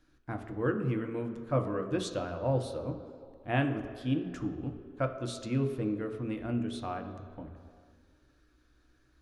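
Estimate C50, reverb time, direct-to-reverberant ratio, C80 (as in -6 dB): 8.5 dB, 2.2 s, 4.0 dB, 10.0 dB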